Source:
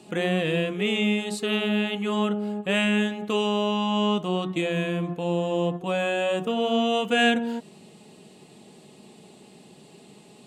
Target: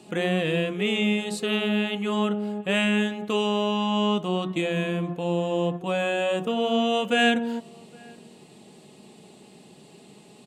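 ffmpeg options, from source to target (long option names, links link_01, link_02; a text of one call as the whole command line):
ffmpeg -i in.wav -filter_complex "[0:a]asplit=2[link_01][link_02];[link_02]adelay=816.3,volume=-26dB,highshelf=frequency=4000:gain=-18.4[link_03];[link_01][link_03]amix=inputs=2:normalize=0" out.wav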